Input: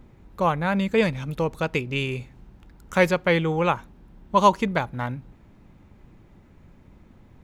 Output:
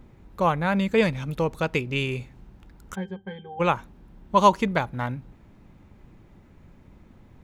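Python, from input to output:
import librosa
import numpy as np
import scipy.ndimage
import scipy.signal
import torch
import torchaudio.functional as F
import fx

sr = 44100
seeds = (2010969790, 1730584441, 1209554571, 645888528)

y = fx.octave_resonator(x, sr, note='G', decay_s=0.15, at=(2.94, 3.59), fade=0.02)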